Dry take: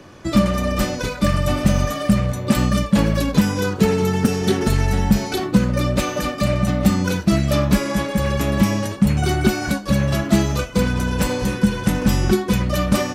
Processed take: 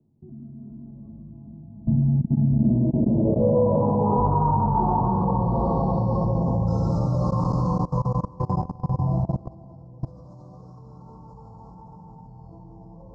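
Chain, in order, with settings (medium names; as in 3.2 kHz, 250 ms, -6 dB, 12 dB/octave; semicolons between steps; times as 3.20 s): Doppler pass-by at 4.75 s, 39 m/s, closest 20 m; graphic EQ 125/250/500/1000/2000/4000/8000 Hz +10/-4/-4/+6/-7/+9/+7 dB; on a send: two-band feedback delay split 470 Hz, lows 741 ms, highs 208 ms, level -11.5 dB; on the sum: LFO low-pass saw down 0.3 Hz 550–1600 Hz; bass shelf 280 Hz -4 dB; in parallel at -8 dB: saturation -22 dBFS, distortion -7 dB; on the sum: elliptic band-stop 950–5100 Hz, stop band 50 dB; plate-style reverb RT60 4 s, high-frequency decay 0.75×, DRR -8 dB; level held to a coarse grid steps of 22 dB; low-pass sweep 250 Hz -> 7.2 kHz, 2.62–6.61 s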